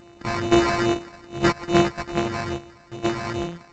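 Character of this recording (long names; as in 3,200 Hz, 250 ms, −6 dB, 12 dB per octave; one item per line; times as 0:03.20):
a buzz of ramps at a fixed pitch in blocks of 128 samples
phaser sweep stages 12, 2.4 Hz, lowest notch 410–2,300 Hz
aliases and images of a low sample rate 3,300 Hz, jitter 0%
G.722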